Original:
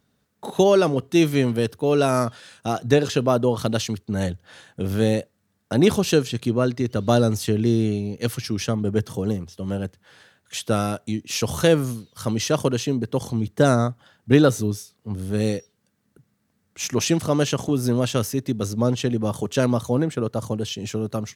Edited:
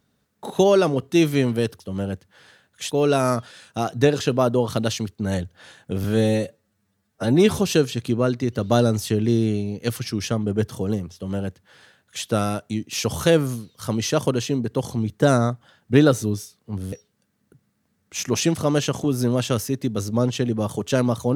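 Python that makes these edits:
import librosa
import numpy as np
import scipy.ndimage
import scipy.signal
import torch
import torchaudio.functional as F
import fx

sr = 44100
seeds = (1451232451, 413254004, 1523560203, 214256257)

y = fx.edit(x, sr, fx.stretch_span(start_s=4.93, length_s=1.03, factor=1.5),
    fx.duplicate(start_s=9.52, length_s=1.11, to_s=1.8),
    fx.cut(start_s=15.3, length_s=0.27), tone=tone)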